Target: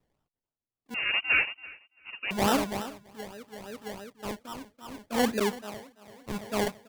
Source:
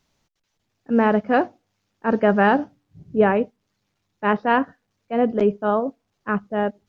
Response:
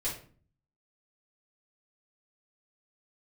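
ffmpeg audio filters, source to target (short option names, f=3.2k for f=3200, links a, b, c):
-filter_complex "[0:a]asettb=1/sr,asplit=3[a][b][c];[a]atrim=end=4.364[d];[b]atrim=start=4.36:end=5.16,asetpts=PTS-STARTPTS,afade=t=in:d=0.004:c=qsin,afade=t=out:st=0.796:d=0.004:c=qsin,aecho=1:1:3.4:0.92,atrim=end_sample=35280[e];[c]atrim=start=5.156[f];[d][e]acrossfade=d=0.004:c1=hsin:c2=qsin[g];[g][f]acrossfade=d=0.004:c1=qsin:c2=hsin,acrusher=samples=28:mix=1:aa=0.000001:lfo=1:lforange=16.8:lforate=3.5,aecho=1:1:335|670|1005|1340:0.316|0.133|0.0558|0.0234,asettb=1/sr,asplit=3[h][i][j];[h]atrim=end=0.944[k];[i]atrim=start=0.94:end=2.31,asetpts=PTS-STARTPTS,afade=t=in:d=0.004:c=qsin,afade=t=out:st=1.366:d=0.004:c=qsin,lowpass=f=2.6k:t=q:w=0.5098,lowpass=f=2.6k:t=q:w=0.6013,lowpass=f=2.6k:t=q:w=0.9,lowpass=f=2.6k:t=q:w=2.563,afreqshift=-3000[l];[j]atrim=start=2.306[m];[k][l]acrossfade=d=0.004:c1=hsin:c2=qsin[n];[n][m]acrossfade=d=0.004:c1=qsin:c2=hsin,aeval=exprs='val(0)*pow(10,-20*(0.5-0.5*cos(2*PI*0.76*n/s))/20)':c=same,volume=-5.5dB"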